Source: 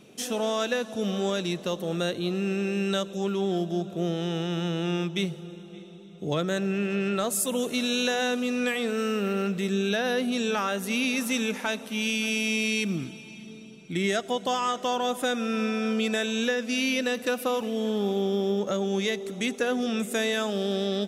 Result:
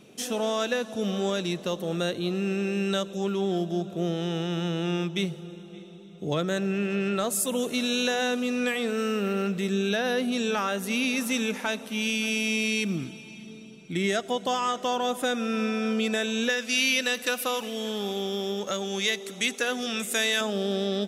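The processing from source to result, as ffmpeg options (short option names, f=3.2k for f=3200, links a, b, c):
-filter_complex "[0:a]asettb=1/sr,asplit=3[a][b][c];[a]atrim=end=16.494[d];[b]atrim=start=16.49:end=20.41,asetpts=PTS-STARTPTS,afade=t=in:d=0.004:c=qsin,afade=t=out:st=3.916:d=0.004:c=qsin,tiltshelf=f=970:g=-6.5[e];[c]atrim=start=20.406[f];[d][e]acrossfade=d=0.004:c1=hsin:c2=qsin[g];[g][f]acrossfade=d=0.004:c1=qsin:c2=hsin"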